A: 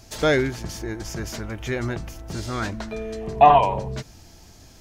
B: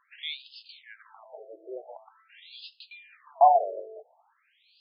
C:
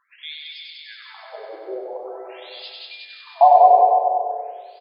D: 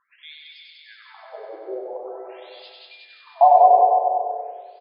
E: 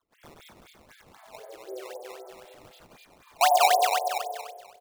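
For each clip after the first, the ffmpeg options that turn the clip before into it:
-filter_complex "[0:a]equalizer=f=1.7k:w=2.1:g=-5.5,acrossover=split=570[a][b];[a]acompressor=threshold=-34dB:ratio=6[c];[c][b]amix=inputs=2:normalize=0,afftfilt=real='re*between(b*sr/1024,470*pow(3700/470,0.5+0.5*sin(2*PI*0.46*pts/sr))/1.41,470*pow(3700/470,0.5+0.5*sin(2*PI*0.46*pts/sr))*1.41)':imag='im*between(b*sr/1024,470*pow(3700/470,0.5+0.5*sin(2*PI*0.46*pts/sr))/1.41,470*pow(3700/470,0.5+0.5*sin(2*PI*0.46*pts/sr))*1.41)':win_size=1024:overlap=0.75,volume=-2dB"
-filter_complex "[0:a]asplit=2[a][b];[b]aecho=0:1:97|194|291|388|485|582|679|776|873:0.631|0.379|0.227|0.136|0.0818|0.0491|0.0294|0.0177|0.0106[c];[a][c]amix=inputs=2:normalize=0,dynaudnorm=f=220:g=9:m=8dB,asplit=2[d][e];[e]aecho=0:1:190|361|514.9|653.4|778.1:0.631|0.398|0.251|0.158|0.1[f];[d][f]amix=inputs=2:normalize=0"
-af "highshelf=f=2.2k:g=-11.5"
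-af "acrusher=samples=16:mix=1:aa=0.000001:lfo=1:lforange=25.6:lforate=3.9,volume=-8dB"

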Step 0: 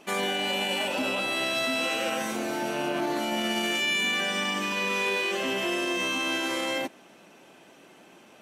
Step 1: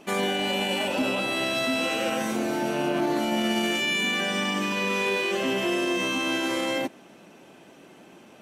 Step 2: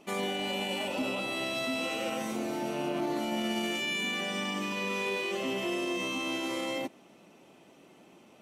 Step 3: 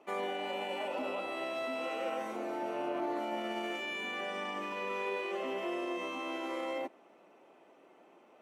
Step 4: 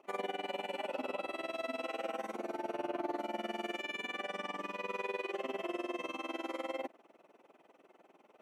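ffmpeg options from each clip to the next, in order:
-af "lowshelf=f=440:g=7"
-af "bandreject=f=1.6k:w=6.6,volume=-6.5dB"
-filter_complex "[0:a]acrossover=split=330 2100:gain=0.1 1 0.178[a][b][c];[a][b][c]amix=inputs=3:normalize=0"
-af "tremolo=f=20:d=0.889,volume=1dB"

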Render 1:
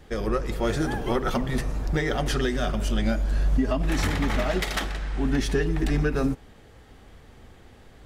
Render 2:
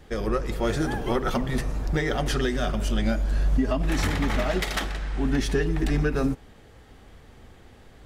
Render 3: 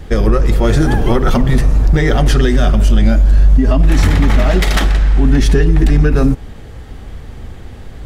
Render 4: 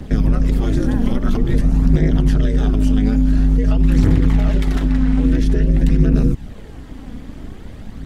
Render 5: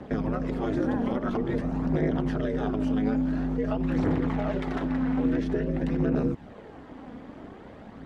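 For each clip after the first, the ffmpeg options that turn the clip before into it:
-af anull
-filter_complex "[0:a]lowshelf=f=180:g=10,asplit=2[a][b];[b]alimiter=limit=-14.5dB:level=0:latency=1:release=34,volume=0dB[c];[a][c]amix=inputs=2:normalize=0,acompressor=threshold=-14dB:ratio=2,volume=6dB"
-filter_complex "[0:a]acrossover=split=250|1600[a][b][c];[a]acompressor=threshold=-8dB:ratio=4[d];[b]acompressor=threshold=-29dB:ratio=4[e];[c]acompressor=threshold=-35dB:ratio=4[f];[d][e][f]amix=inputs=3:normalize=0,tremolo=f=210:d=0.974,aphaser=in_gain=1:out_gain=1:delay=4.2:decay=0.36:speed=0.49:type=triangular"
-af "asoftclip=type=hard:threshold=-4dB,bandpass=f=750:t=q:w=0.79:csg=0"

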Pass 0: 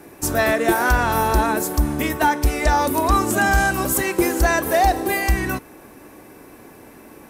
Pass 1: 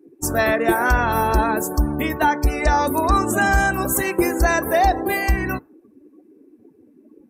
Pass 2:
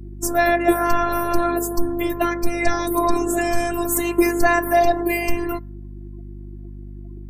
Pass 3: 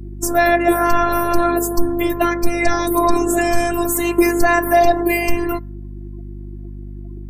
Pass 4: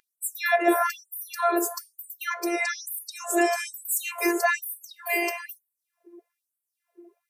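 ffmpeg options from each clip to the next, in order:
-af "afftdn=nr=30:nf=-33"
-af "afftfilt=real='hypot(re,im)*cos(PI*b)':imag='0':win_size=512:overlap=0.75,aeval=exprs='val(0)+0.0141*(sin(2*PI*50*n/s)+sin(2*PI*2*50*n/s)/2+sin(2*PI*3*50*n/s)/3+sin(2*PI*4*50*n/s)/4+sin(2*PI*5*50*n/s)/5)':c=same,volume=3dB"
-af "alimiter=level_in=5dB:limit=-1dB:release=50:level=0:latency=1,volume=-1dB"
-af "flanger=delay=2.4:depth=5.9:regen=85:speed=0.28:shape=triangular,afftfilt=real='re*gte(b*sr/1024,300*pow(7800/300,0.5+0.5*sin(2*PI*1.1*pts/sr)))':imag='im*gte(b*sr/1024,300*pow(7800/300,0.5+0.5*sin(2*PI*1.1*pts/sr)))':win_size=1024:overlap=0.75"

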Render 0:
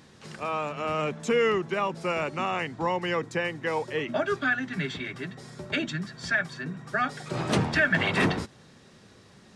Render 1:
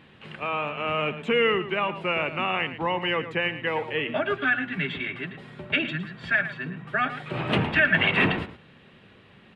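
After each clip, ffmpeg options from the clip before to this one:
-filter_complex "[0:a]highshelf=f=4.1k:t=q:w=3:g=-13,asplit=2[a][b];[b]adelay=110.8,volume=-12dB,highshelf=f=4k:g=-2.49[c];[a][c]amix=inputs=2:normalize=0"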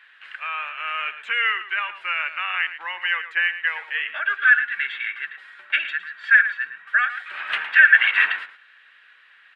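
-af "highpass=f=1.6k:t=q:w=4.2,volume=-2dB"

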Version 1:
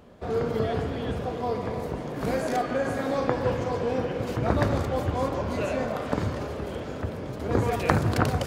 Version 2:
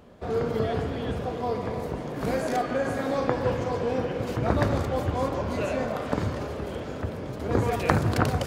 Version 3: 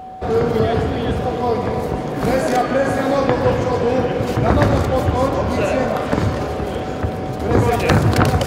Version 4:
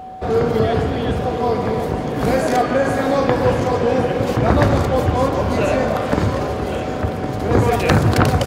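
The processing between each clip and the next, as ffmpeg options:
-af anull
-af "aeval=exprs='val(0)+0.00891*sin(2*PI*750*n/s)':c=same,aeval=exprs='0.631*sin(PI/2*2*val(0)/0.631)':c=same"
-af "aecho=1:1:1111:0.266"

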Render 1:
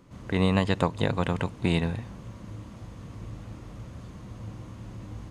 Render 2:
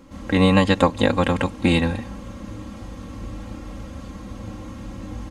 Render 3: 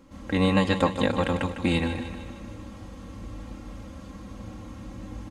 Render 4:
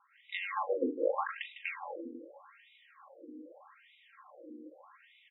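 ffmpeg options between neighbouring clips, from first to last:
-af "aecho=1:1:3.7:0.88,volume=6dB"
-af "aecho=1:1:153|306|459|612|765|918:0.316|0.177|0.0992|0.0555|0.0311|0.0174,volume=-6dB"
-filter_complex "[0:a]asplit=2[a][b];[b]adelay=39,volume=-8dB[c];[a][c]amix=inputs=2:normalize=0,afftfilt=real='re*between(b*sr/1024,340*pow(2800/340,0.5+0.5*sin(2*PI*0.82*pts/sr))/1.41,340*pow(2800/340,0.5+0.5*sin(2*PI*0.82*pts/sr))*1.41)':imag='im*between(b*sr/1024,340*pow(2800/340,0.5+0.5*sin(2*PI*0.82*pts/sr))/1.41,340*pow(2800/340,0.5+0.5*sin(2*PI*0.82*pts/sr))*1.41)':win_size=1024:overlap=0.75,volume=-2.5dB"

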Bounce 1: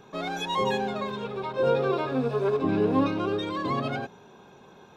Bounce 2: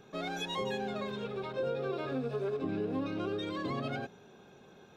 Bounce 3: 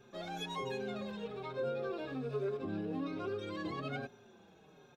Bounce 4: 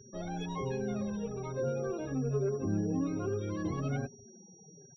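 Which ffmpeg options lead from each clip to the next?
-af "equalizer=f=970:t=o:w=0.35:g=-9.5,acompressor=threshold=-27dB:ratio=6,volume=-4dB"
-filter_complex "[0:a]asplit=2[a][b];[b]adelay=5.2,afreqshift=-1.2[c];[a][c]amix=inputs=2:normalize=1,volume=-1dB"
-af "aeval=exprs='val(0)+0.00447*sin(2*PI*5700*n/s)':c=same,afftfilt=real='re*gte(hypot(re,im),0.00355)':imag='im*gte(hypot(re,im),0.00355)':win_size=1024:overlap=0.75,aemphasis=mode=reproduction:type=riaa"

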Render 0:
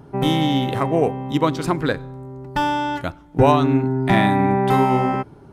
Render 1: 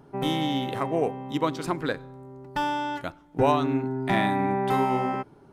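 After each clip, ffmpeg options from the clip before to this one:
-af "equalizer=f=63:t=o:w=2.4:g=-9,volume=-6dB"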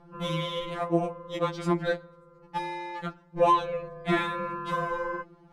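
-af "adynamicsmooth=sensitivity=4.5:basefreq=6.5k,tremolo=f=240:d=0.71,afftfilt=real='re*2.83*eq(mod(b,8),0)':imag='im*2.83*eq(mod(b,8),0)':win_size=2048:overlap=0.75,volume=4.5dB"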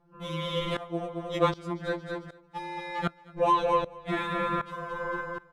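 -filter_complex "[0:a]asplit=2[a][b];[b]aecho=0:1:223|446|669|892:0.316|0.133|0.0558|0.0234[c];[a][c]amix=inputs=2:normalize=0,aeval=exprs='val(0)*pow(10,-19*if(lt(mod(-1.3*n/s,1),2*abs(-1.3)/1000),1-mod(-1.3*n/s,1)/(2*abs(-1.3)/1000),(mod(-1.3*n/s,1)-2*abs(-1.3)/1000)/(1-2*abs(-1.3)/1000))/20)':c=same,volume=6.5dB"

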